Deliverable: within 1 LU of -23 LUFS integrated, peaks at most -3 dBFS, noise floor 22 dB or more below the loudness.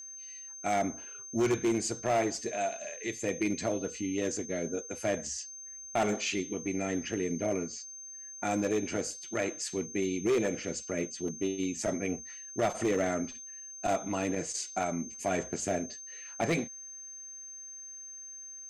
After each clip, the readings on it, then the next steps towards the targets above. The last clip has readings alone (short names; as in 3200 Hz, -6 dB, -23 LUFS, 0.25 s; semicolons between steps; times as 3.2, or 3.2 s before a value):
clipped 1.0%; flat tops at -22.5 dBFS; steady tone 6300 Hz; tone level -43 dBFS; loudness -33.5 LUFS; peak -22.5 dBFS; loudness target -23.0 LUFS
-> clip repair -22.5 dBFS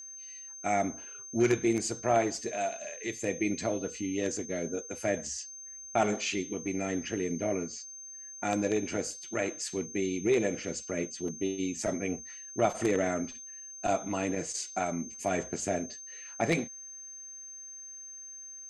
clipped 0.0%; steady tone 6300 Hz; tone level -43 dBFS
-> notch 6300 Hz, Q 30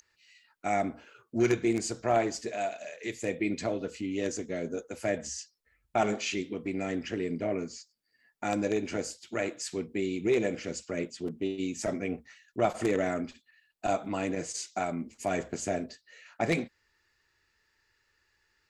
steady tone none; loudness -32.5 LUFS; peak -13.0 dBFS; loudness target -23.0 LUFS
-> gain +9.5 dB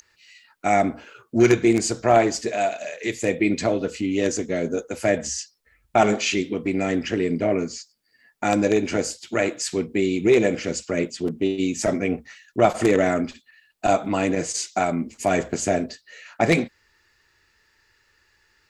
loudness -23.0 LUFS; peak -3.5 dBFS; noise floor -65 dBFS